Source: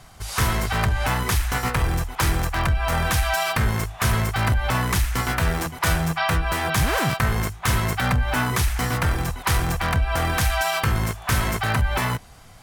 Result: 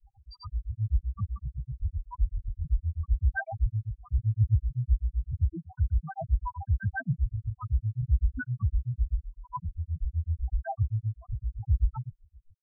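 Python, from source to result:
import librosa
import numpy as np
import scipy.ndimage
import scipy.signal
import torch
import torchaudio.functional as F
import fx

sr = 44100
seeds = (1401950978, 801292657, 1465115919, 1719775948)

y = fx.spec_topn(x, sr, count=1)
y = fx.granulator(y, sr, seeds[0], grain_ms=117.0, per_s=7.8, spray_ms=100.0, spread_st=0)
y = y * 10.0 ** (5.0 / 20.0)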